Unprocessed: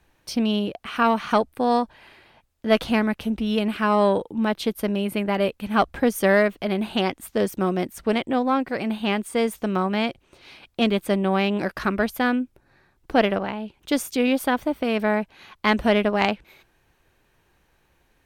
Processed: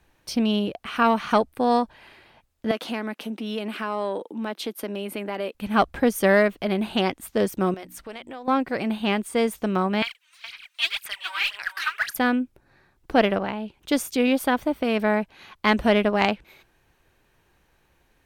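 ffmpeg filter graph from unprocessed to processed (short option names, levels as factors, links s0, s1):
-filter_complex "[0:a]asettb=1/sr,asplit=3[s0][s1][s2];[s0]atrim=end=2.714[s3];[s1]atrim=start=2.71:end=5.55,asetpts=PTS-STARTPTS,afade=t=in:d=0.004:c=qsin,afade=t=out:st=2.836:d=0.004:c=qsin,highpass=f=230:w=0.5412,highpass=f=230:w=1.3066,acompressor=threshold=0.0355:ratio=2:attack=3.2:release=140:knee=1:detection=peak[s4];[s2]atrim=start=5.546[s5];[s3][s4]acrossfade=d=0.004:c1=hsin:c2=qsin[s6];[s6][s5]acrossfade=d=0.004:c1=qsin:c2=hsin,asettb=1/sr,asplit=3[s7][s8][s9];[s7]atrim=end=7.744[s10];[s8]atrim=start=7.74:end=8.48,asetpts=PTS-STARTPTS,afade=t=in:d=0.004:c=qsin,afade=t=out:st=0.736:d=0.004:c=qsin,equalizer=f=190:t=o:w=2.5:g=-11,bandreject=f=60:t=h:w=6,bandreject=f=120:t=h:w=6,bandreject=f=180:t=h:w=6,bandreject=f=240:t=h:w=6,bandreject=f=300:t=h:w=6,acompressor=threshold=0.0178:ratio=4:attack=3.2:release=140:knee=1:detection=peak[s11];[s9]atrim=start=8.476[s12];[s10][s11]acrossfade=d=0.004:c1=hsin:c2=qsin[s13];[s13][s12]acrossfade=d=0.004:c1=qsin:c2=hsin,asettb=1/sr,asplit=3[s14][s15][s16];[s14]atrim=end=10.024[s17];[s15]atrim=start=10.02:end=12.17,asetpts=PTS-STARTPTS,afade=t=in:d=0.004:c=qsin,afade=t=out:st=2.146:d=0.004:c=qsin,highpass=f=1400:w=0.5412,highpass=f=1400:w=1.3066,aphaser=in_gain=1:out_gain=1:delay=3.3:decay=0.8:speed=1.9:type=sinusoidal,aecho=1:1:419:0.266,atrim=end_sample=94815[s18];[s16]atrim=start=12.166[s19];[s17][s18]acrossfade=d=0.004:c1=hsin:c2=qsin[s20];[s20][s19]acrossfade=d=0.004:c1=qsin:c2=hsin"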